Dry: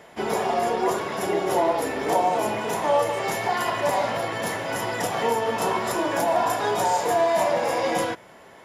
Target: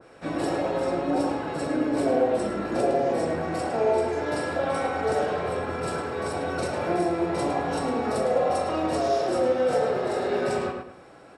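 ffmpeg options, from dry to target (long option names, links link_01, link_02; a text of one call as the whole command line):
ffmpeg -i in.wav -filter_complex "[0:a]asetrate=33516,aresample=44100,asplit=2[link_01][link_02];[link_02]adelay=107,lowpass=frequency=3700:poles=1,volume=-4dB,asplit=2[link_03][link_04];[link_04]adelay=107,lowpass=frequency=3700:poles=1,volume=0.34,asplit=2[link_05][link_06];[link_06]adelay=107,lowpass=frequency=3700:poles=1,volume=0.34,asplit=2[link_07][link_08];[link_08]adelay=107,lowpass=frequency=3700:poles=1,volume=0.34[link_09];[link_01][link_03][link_05][link_07][link_09]amix=inputs=5:normalize=0,adynamicequalizer=threshold=0.00891:dfrequency=1900:dqfactor=0.7:tfrequency=1900:tqfactor=0.7:attack=5:release=100:ratio=0.375:range=2:mode=cutabove:tftype=highshelf,volume=-3dB" out.wav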